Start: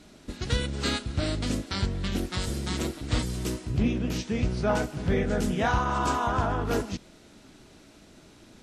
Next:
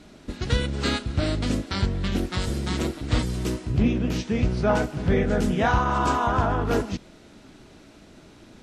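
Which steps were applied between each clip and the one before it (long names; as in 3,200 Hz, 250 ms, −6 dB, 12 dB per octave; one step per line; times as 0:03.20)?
high-shelf EQ 4,800 Hz −7 dB
level +4 dB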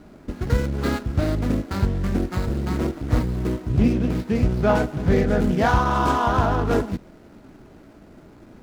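running median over 15 samples
level +3 dB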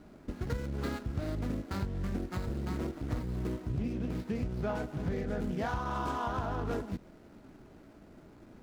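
downward compressor, threshold −23 dBFS, peak gain reduction 10 dB
level −7.5 dB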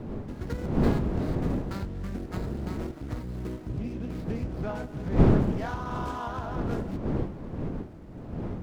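wind on the microphone 260 Hz −30 dBFS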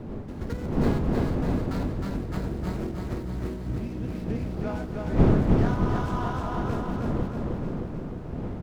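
repeating echo 312 ms, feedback 56%, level −3 dB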